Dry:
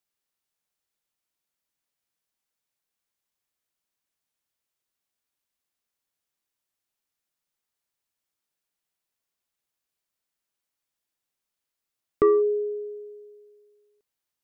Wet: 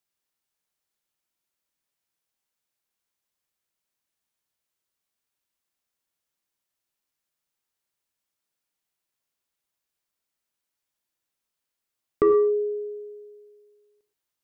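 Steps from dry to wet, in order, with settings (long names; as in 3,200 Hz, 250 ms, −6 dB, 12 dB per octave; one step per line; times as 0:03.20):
reverb whose tail is shaped and stops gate 140 ms flat, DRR 7 dB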